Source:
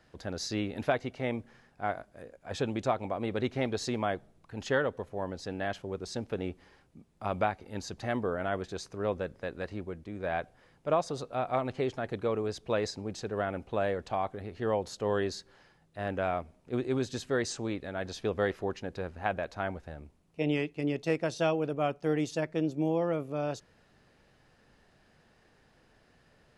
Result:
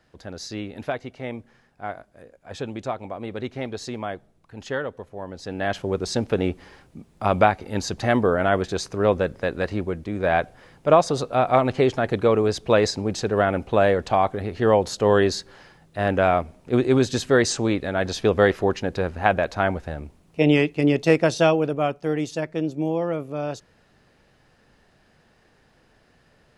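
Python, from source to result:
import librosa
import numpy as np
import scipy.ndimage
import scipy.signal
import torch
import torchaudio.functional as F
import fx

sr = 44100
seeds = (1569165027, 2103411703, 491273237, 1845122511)

y = fx.gain(x, sr, db=fx.line((5.26, 0.5), (5.84, 12.0), (21.27, 12.0), (22.09, 4.5)))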